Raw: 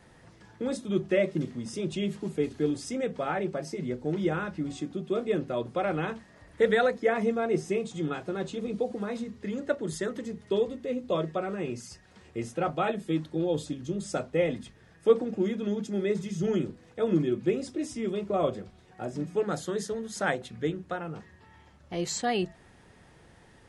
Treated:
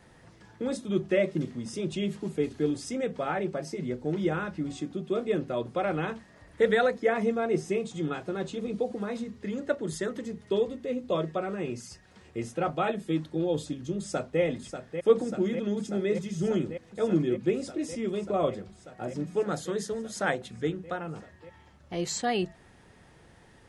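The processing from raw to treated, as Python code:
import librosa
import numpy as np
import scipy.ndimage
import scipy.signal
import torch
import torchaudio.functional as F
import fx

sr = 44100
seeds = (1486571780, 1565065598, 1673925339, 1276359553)

y = fx.echo_throw(x, sr, start_s=13.97, length_s=0.44, ms=590, feedback_pct=85, wet_db=-8.0)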